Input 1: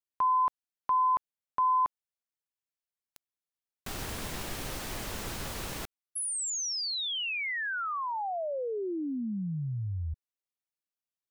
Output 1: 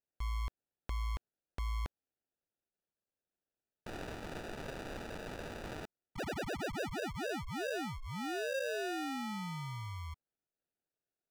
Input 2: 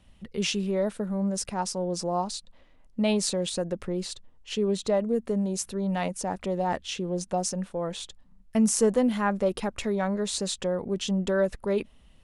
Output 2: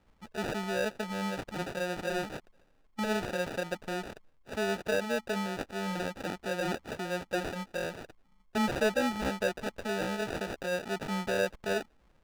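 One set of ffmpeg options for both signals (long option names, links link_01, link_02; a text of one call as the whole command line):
ffmpeg -i in.wav -filter_complex "[0:a]acrusher=samples=41:mix=1:aa=0.000001,asplit=2[link_01][link_02];[link_02]highpass=frequency=720:poles=1,volume=8dB,asoftclip=type=tanh:threshold=-12dB[link_03];[link_01][link_03]amix=inputs=2:normalize=0,lowpass=frequency=3500:poles=1,volume=-6dB,volume=-4.5dB" out.wav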